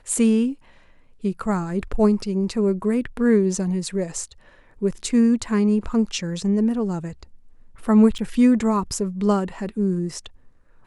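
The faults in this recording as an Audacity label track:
8.180000	8.190000	gap 7.4 ms

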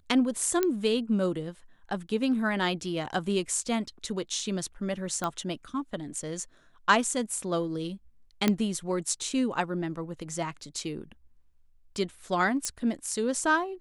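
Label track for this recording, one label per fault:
0.630000	0.630000	pop -12 dBFS
5.240000	5.240000	pop -16 dBFS
8.480000	8.480000	pop -9 dBFS
12.650000	12.650000	pop -15 dBFS

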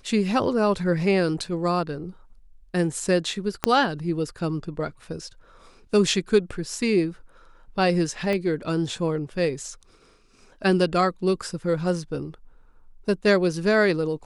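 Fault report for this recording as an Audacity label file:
3.640000	3.640000	pop -5 dBFS
8.330000	8.330000	pop -15 dBFS

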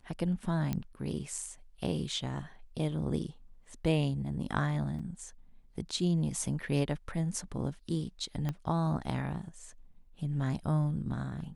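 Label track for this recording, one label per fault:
0.730000	0.730000	pop -19 dBFS
4.990000	4.990000	gap 4.8 ms
8.490000	8.490000	pop -21 dBFS

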